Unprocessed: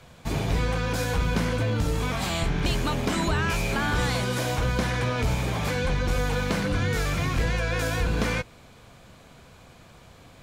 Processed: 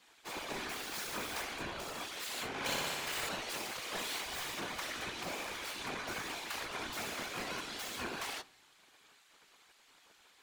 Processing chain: tracing distortion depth 0.14 ms; spectral gate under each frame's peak -15 dB weak; 0.69–1.42 s: word length cut 6-bit, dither none; whisper effect; 2.48–3.29 s: flutter echo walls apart 10.4 m, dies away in 1.4 s; on a send at -20.5 dB: reverberation RT60 1.0 s, pre-delay 3 ms; on the sum: trim -6.5 dB

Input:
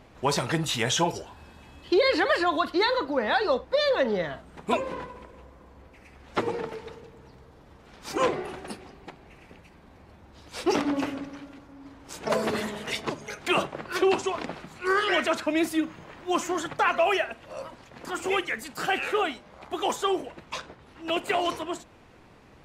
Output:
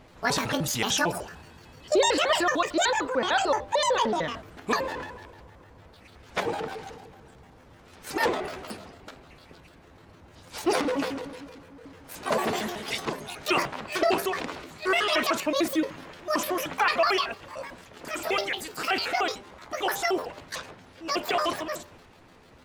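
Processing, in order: pitch shift switched off and on +9.5 st, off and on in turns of 75 ms; de-hum 198 Hz, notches 5; transient shaper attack 0 dB, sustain +4 dB

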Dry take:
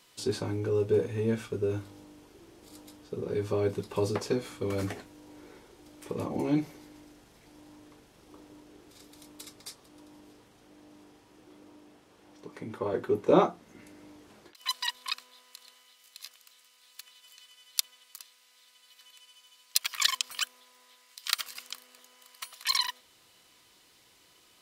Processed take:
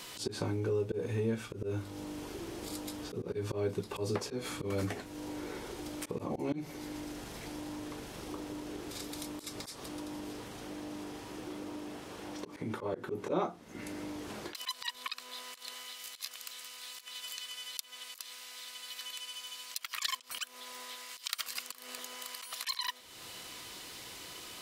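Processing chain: slow attack 175 ms; compression 2.5:1, threshold -54 dBFS, peak gain reduction 21 dB; trim +14.5 dB

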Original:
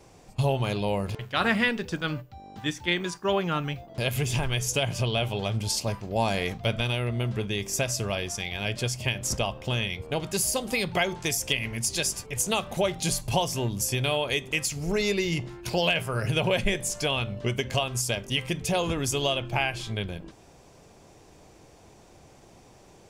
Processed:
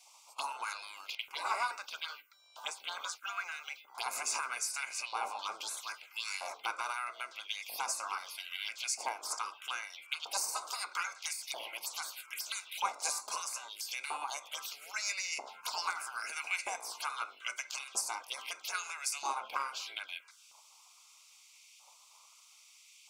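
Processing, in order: spectral gate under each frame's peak -15 dB weak; touch-sensitive phaser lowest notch 220 Hz, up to 3.2 kHz, full sweep at -35 dBFS; LFO high-pass saw up 0.78 Hz 790–2400 Hz; in parallel at -8 dB: saturation -29 dBFS, distortion -16 dB; on the sum: Butterworth band-stop 1.8 kHz, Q 3.7

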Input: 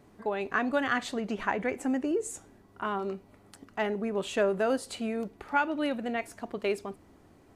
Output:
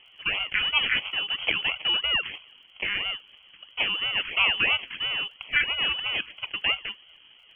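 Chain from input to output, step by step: decimation with a swept rate 24×, swing 60% 3 Hz; frequency inversion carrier 3.2 kHz; crackle 22 per s -59 dBFS; trim +3.5 dB

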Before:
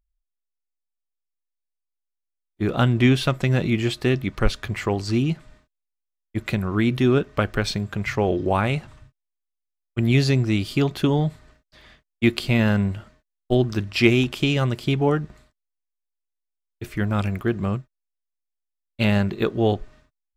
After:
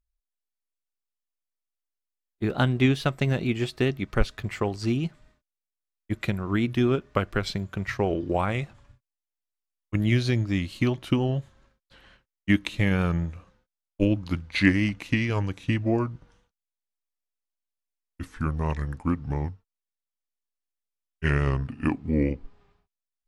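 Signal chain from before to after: gliding tape speed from 110% -> 65%; vibrato 4.4 Hz 36 cents; transient shaper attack +3 dB, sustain -3 dB; trim -5 dB

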